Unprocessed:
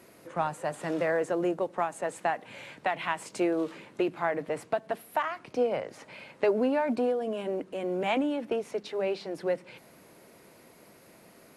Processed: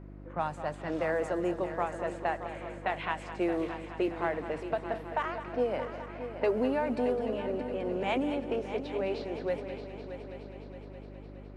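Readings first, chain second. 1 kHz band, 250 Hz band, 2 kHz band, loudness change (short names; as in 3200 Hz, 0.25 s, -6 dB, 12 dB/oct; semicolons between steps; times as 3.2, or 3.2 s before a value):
-2.0 dB, -1.5 dB, -2.5 dB, -2.5 dB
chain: low-pass opened by the level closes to 1300 Hz, open at -23 dBFS; multi-head echo 0.208 s, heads first and third, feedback 67%, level -12 dB; buzz 50 Hz, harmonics 7, -44 dBFS -4 dB/oct; gain -3 dB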